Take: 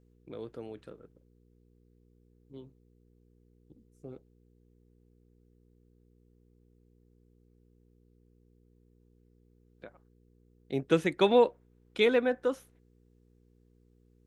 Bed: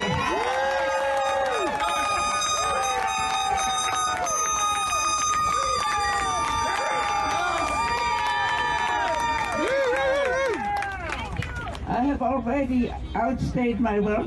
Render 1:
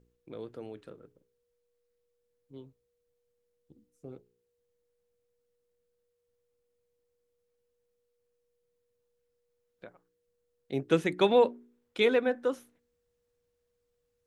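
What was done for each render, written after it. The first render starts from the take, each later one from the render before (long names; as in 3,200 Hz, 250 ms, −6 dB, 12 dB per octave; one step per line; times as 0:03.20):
hum removal 60 Hz, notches 7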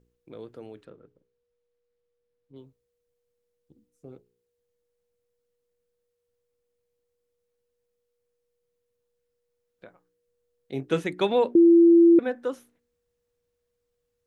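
0:00.85–0:02.56: high-frequency loss of the air 130 metres
0:09.86–0:11.04: double-tracking delay 23 ms −9 dB
0:11.55–0:12.19: beep over 338 Hz −11.5 dBFS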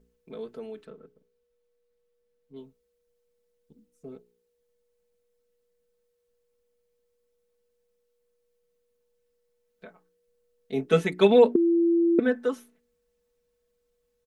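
dynamic equaliser 290 Hz, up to +4 dB, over −27 dBFS, Q 0.83
comb filter 4.6 ms, depth 96%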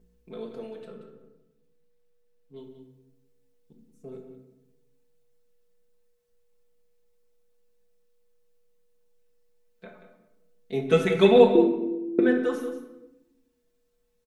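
single-tap delay 182 ms −11 dB
rectangular room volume 360 cubic metres, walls mixed, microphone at 0.86 metres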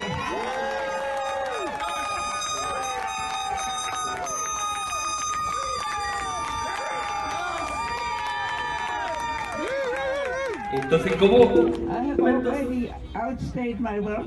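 mix in bed −4 dB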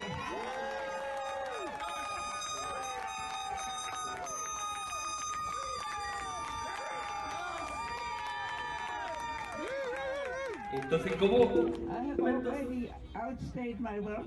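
level −10 dB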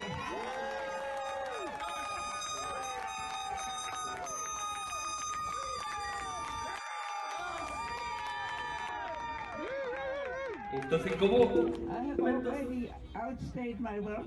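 0:06.78–0:07.37: high-pass filter 1,000 Hz → 360 Hz 24 dB per octave
0:08.89–0:10.81: high-frequency loss of the air 120 metres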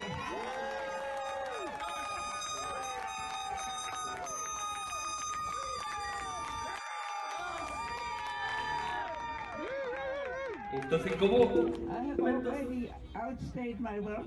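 0:08.39–0:09.03: flutter between parallel walls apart 4.7 metres, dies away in 0.47 s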